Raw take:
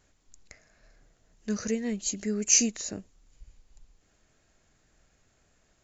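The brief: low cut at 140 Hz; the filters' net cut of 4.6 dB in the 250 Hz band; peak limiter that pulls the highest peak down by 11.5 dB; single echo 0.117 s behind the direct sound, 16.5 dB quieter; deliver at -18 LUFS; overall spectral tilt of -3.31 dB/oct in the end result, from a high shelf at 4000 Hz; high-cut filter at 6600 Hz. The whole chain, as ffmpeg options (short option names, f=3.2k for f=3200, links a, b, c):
-af "highpass=140,lowpass=6.6k,equalizer=f=250:t=o:g=-4.5,highshelf=f=4k:g=-6,alimiter=level_in=0.5dB:limit=-24dB:level=0:latency=1,volume=-0.5dB,aecho=1:1:117:0.15,volume=18.5dB"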